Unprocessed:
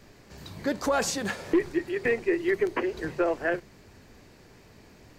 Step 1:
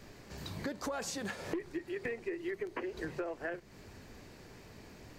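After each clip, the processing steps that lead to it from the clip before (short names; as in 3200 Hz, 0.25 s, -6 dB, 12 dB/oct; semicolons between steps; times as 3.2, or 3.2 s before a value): compressor 6:1, threshold -36 dBFS, peak gain reduction 16 dB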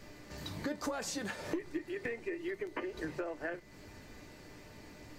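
whine 2000 Hz -64 dBFS; resonator 300 Hz, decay 0.16 s, harmonics all, mix 70%; gain +8 dB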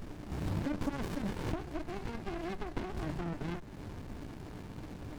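in parallel at 0 dB: negative-ratio compressor -42 dBFS, ratio -0.5; on the sum: running maximum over 65 samples; gain +2.5 dB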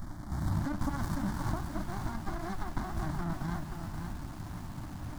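fixed phaser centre 1100 Hz, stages 4; lo-fi delay 0.528 s, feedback 35%, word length 9-bit, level -5.5 dB; gain +5 dB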